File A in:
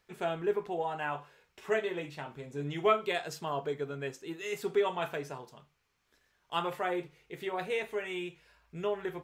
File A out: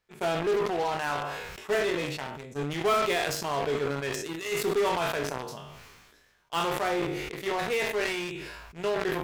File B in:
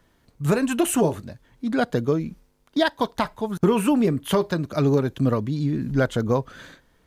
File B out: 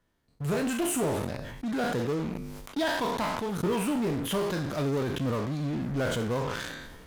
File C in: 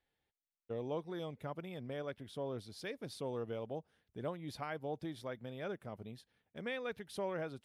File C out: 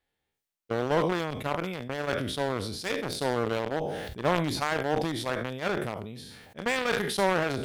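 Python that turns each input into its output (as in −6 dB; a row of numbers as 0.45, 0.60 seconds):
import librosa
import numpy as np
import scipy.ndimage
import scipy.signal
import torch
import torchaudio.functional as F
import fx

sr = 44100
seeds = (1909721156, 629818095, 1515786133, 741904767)

p1 = fx.spec_trails(x, sr, decay_s=0.43)
p2 = fx.fuzz(p1, sr, gain_db=33.0, gate_db=-37.0)
p3 = p1 + (p2 * 10.0 ** (-5.5 / 20.0))
p4 = fx.sustainer(p3, sr, db_per_s=32.0)
y = p4 * 10.0 ** (-30 / 20.0) / np.sqrt(np.mean(np.square(p4)))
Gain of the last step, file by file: −7.5, −14.5, +2.0 decibels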